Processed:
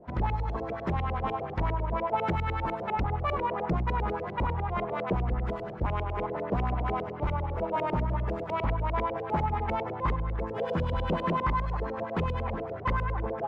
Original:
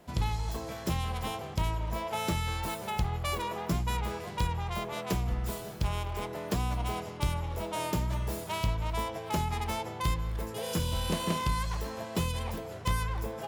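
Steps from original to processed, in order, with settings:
wave folding −24 dBFS
auto-filter low-pass saw up 10 Hz 400–2,400 Hz
level +2 dB

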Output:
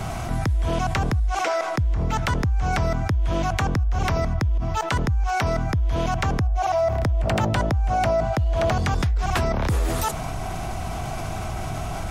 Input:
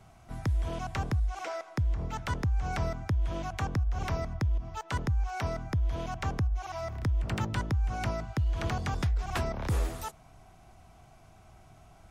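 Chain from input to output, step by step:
0:06.41–0:08.72: parametric band 660 Hz +11.5 dB 0.58 octaves
envelope flattener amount 70%
level +5 dB

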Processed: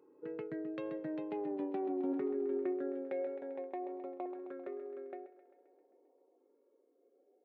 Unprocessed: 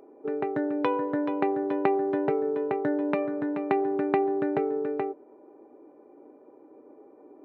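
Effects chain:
source passing by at 0:01.59, 29 m/s, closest 12 metres
auto-filter notch saw up 0.47 Hz 650–1,800 Hz
tube saturation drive 18 dB, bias 0.2
on a send: feedback echo with a high-pass in the loop 132 ms, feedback 65%, high-pass 200 Hz, level −14 dB
on the sum: tape wow and flutter 17 cents
reversed playback
downward compressor 6 to 1, threshold −40 dBFS, peak gain reduction 17 dB
reversed playback
high-pass filter sweep 130 Hz → 490 Hz, 0:00.82–0:03.36
level +1.5 dB

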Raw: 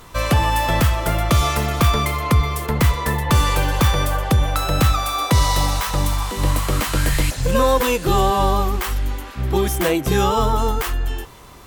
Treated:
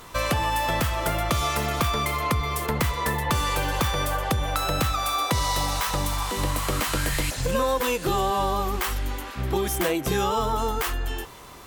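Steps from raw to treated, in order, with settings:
low-shelf EQ 190 Hz −6.5 dB
downward compressor 3 to 1, threshold −22 dBFS, peak gain reduction 7 dB

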